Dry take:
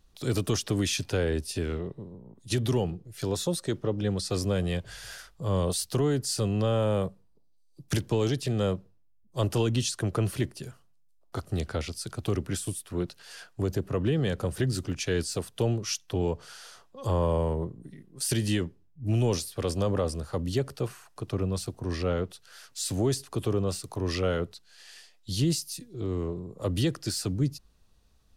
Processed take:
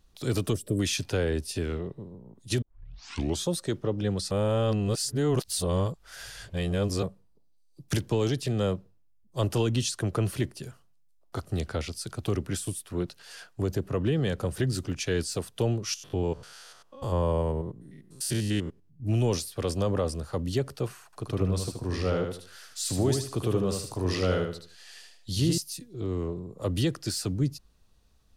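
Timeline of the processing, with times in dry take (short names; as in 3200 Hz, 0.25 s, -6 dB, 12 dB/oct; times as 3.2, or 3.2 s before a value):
0.53–0.8 spectral gain 650–7400 Hz -17 dB
2.62 tape start 0.85 s
4.31–7.03 reverse
15.94–19.02 stepped spectrum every 0.1 s
21.05–25.58 feedback echo 76 ms, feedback 31%, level -5 dB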